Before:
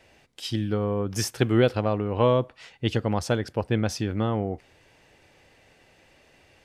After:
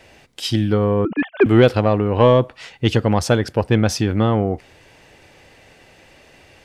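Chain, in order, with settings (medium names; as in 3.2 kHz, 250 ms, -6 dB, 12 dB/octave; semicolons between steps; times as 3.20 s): 1.05–1.46 s: formants replaced by sine waves; in parallel at -5.5 dB: saturation -18.5 dBFS, distortion -11 dB; on the sum: trim +5.5 dB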